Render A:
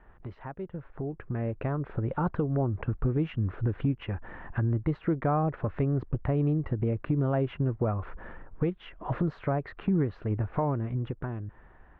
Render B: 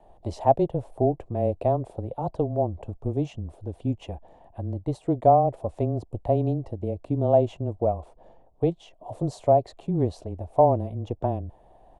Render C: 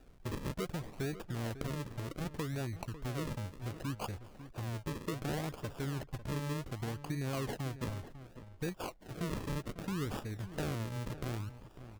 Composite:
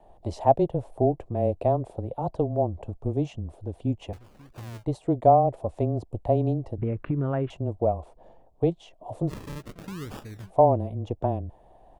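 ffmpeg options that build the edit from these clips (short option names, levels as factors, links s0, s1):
-filter_complex "[2:a]asplit=2[s0][s1];[1:a]asplit=4[s2][s3][s4][s5];[s2]atrim=end=4.132[s6];[s0]atrim=start=4.128:end=4.852[s7];[s3]atrim=start=4.848:end=6.782[s8];[0:a]atrim=start=6.778:end=7.502[s9];[s4]atrim=start=7.498:end=9.33[s10];[s1]atrim=start=9.27:end=10.52[s11];[s5]atrim=start=10.46[s12];[s6][s7]acrossfade=d=0.004:c1=hsin:c2=hsin[s13];[s13][s8]acrossfade=d=0.004:c1=hsin:c2=hsin[s14];[s14][s9]acrossfade=d=0.004:c1=hsin:c2=hsin[s15];[s15][s10]acrossfade=d=0.004:c1=hsin:c2=hsin[s16];[s16][s11]acrossfade=d=0.06:c1=tri:c2=tri[s17];[s17][s12]acrossfade=d=0.06:c1=tri:c2=tri"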